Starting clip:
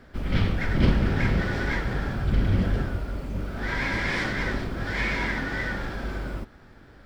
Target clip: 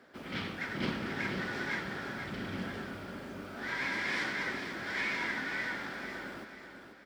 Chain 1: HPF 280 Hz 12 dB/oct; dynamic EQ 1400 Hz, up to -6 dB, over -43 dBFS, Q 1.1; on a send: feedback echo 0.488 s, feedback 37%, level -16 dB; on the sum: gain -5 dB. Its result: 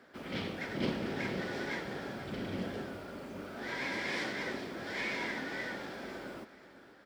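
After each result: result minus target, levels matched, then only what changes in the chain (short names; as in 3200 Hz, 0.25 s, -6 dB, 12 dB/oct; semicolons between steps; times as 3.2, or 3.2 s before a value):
echo-to-direct -7.5 dB; 500 Hz band +5.0 dB
change: feedback echo 0.488 s, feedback 37%, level -8.5 dB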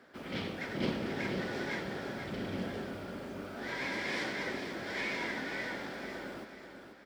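500 Hz band +5.0 dB
change: dynamic EQ 540 Hz, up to -6 dB, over -43 dBFS, Q 1.1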